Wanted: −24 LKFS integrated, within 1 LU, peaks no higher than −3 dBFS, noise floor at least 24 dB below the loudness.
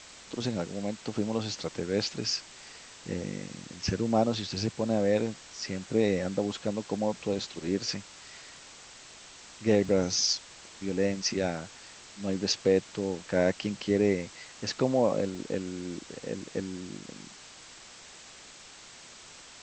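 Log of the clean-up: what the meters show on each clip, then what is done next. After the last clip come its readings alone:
number of dropouts 2; longest dropout 1.1 ms; background noise floor −50 dBFS; target noise floor −55 dBFS; integrated loudness −30.5 LKFS; sample peak −11.0 dBFS; target loudness −24.0 LKFS
→ repair the gap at 0:09.85/0:15.35, 1.1 ms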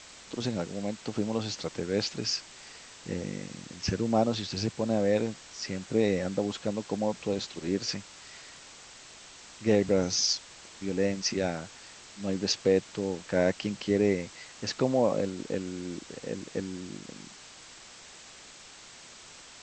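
number of dropouts 0; background noise floor −50 dBFS; target noise floor −55 dBFS
→ broadband denoise 6 dB, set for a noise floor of −50 dBFS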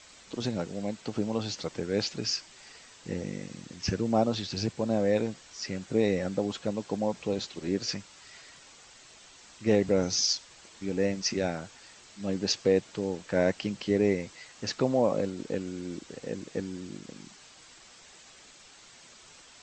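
background noise floor −54 dBFS; target noise floor −55 dBFS
→ broadband denoise 6 dB, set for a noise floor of −54 dBFS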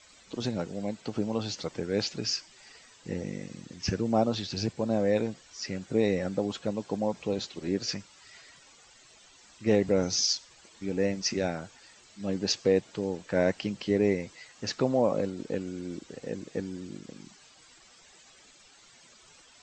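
background noise floor −57 dBFS; integrated loudness −30.5 LKFS; sample peak −11.0 dBFS; target loudness −24.0 LKFS
→ level +6.5 dB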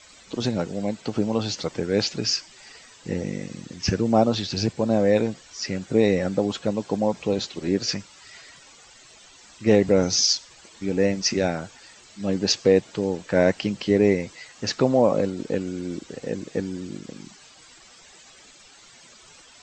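integrated loudness −24.0 LKFS; sample peak −4.5 dBFS; background noise floor −50 dBFS

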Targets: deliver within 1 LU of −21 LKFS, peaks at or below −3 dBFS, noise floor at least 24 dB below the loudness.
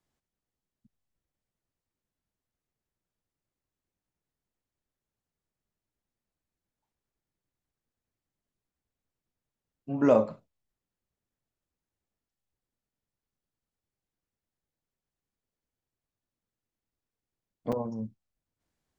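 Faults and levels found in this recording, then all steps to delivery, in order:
number of dropouts 1; longest dropout 5.2 ms; integrated loudness −28.0 LKFS; sample peak −9.0 dBFS; target loudness −21.0 LKFS
→ repair the gap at 0:17.72, 5.2 ms
level +7 dB
brickwall limiter −3 dBFS

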